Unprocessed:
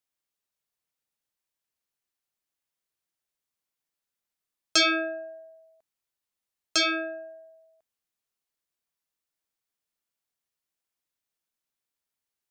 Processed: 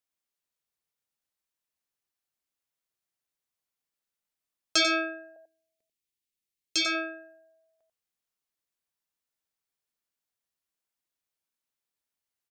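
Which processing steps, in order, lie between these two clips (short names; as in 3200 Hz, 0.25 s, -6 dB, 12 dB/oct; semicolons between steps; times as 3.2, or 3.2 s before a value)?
5.36–6.86 band shelf 950 Hz -15.5 dB; echo 92 ms -8 dB; gain -2.5 dB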